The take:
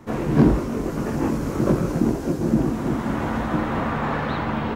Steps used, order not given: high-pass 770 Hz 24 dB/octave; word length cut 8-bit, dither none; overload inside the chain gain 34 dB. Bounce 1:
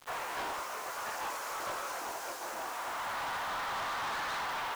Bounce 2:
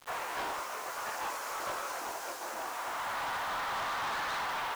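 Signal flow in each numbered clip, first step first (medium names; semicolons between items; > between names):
high-pass > word length cut > overload inside the chain; high-pass > overload inside the chain > word length cut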